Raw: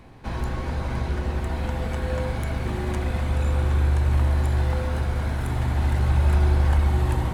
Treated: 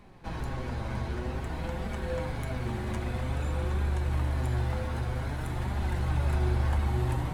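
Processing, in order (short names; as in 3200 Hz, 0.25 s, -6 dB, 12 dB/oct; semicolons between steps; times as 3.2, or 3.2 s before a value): flange 0.52 Hz, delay 4.8 ms, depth 4.7 ms, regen +43%; gain -1.5 dB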